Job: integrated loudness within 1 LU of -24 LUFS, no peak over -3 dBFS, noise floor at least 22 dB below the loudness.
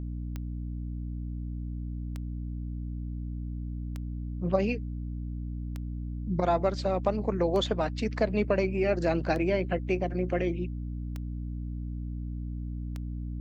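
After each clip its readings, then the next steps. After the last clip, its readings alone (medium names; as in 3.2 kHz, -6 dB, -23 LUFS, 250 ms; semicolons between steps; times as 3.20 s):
clicks found 8; hum 60 Hz; highest harmonic 300 Hz; hum level -32 dBFS; loudness -31.5 LUFS; peak level -12.0 dBFS; loudness target -24.0 LUFS
-> de-click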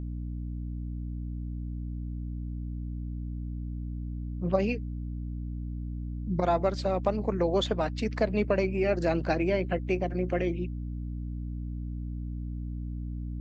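clicks found 0; hum 60 Hz; highest harmonic 300 Hz; hum level -32 dBFS
-> hum notches 60/120/180/240/300 Hz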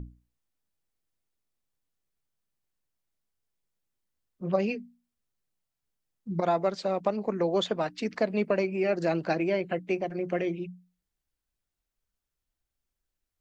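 hum not found; loudness -29.5 LUFS; peak level -13.0 dBFS; loudness target -24.0 LUFS
-> trim +5.5 dB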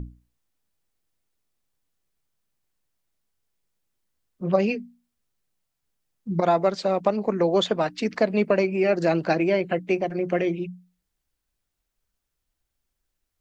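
loudness -24.0 LUFS; peak level -7.5 dBFS; noise floor -81 dBFS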